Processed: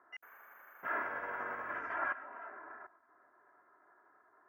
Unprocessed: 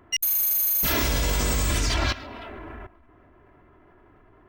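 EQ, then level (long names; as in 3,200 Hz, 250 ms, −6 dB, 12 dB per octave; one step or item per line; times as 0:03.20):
high-pass filter 480 Hz 6 dB per octave
elliptic low-pass filter 1,600 Hz, stop band 60 dB
first difference
+12.0 dB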